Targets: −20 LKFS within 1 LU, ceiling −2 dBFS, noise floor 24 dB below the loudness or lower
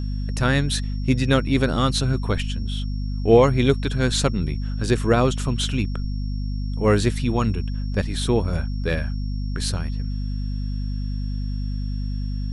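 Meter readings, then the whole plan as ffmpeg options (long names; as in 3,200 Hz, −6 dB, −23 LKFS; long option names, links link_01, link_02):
mains hum 50 Hz; hum harmonics up to 250 Hz; level of the hum −23 dBFS; interfering tone 5,500 Hz; level of the tone −47 dBFS; integrated loudness −23.0 LKFS; sample peak −3.5 dBFS; target loudness −20.0 LKFS
→ -af "bandreject=frequency=50:width_type=h:width=4,bandreject=frequency=100:width_type=h:width=4,bandreject=frequency=150:width_type=h:width=4,bandreject=frequency=200:width_type=h:width=4,bandreject=frequency=250:width_type=h:width=4"
-af "bandreject=frequency=5500:width=30"
-af "volume=3dB,alimiter=limit=-2dB:level=0:latency=1"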